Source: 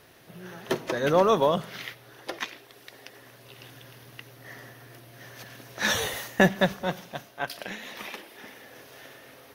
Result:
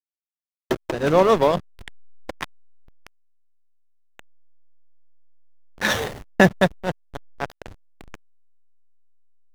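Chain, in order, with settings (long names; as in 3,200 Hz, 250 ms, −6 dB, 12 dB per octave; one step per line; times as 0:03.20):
slack as between gear wheels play −22 dBFS
level +5.5 dB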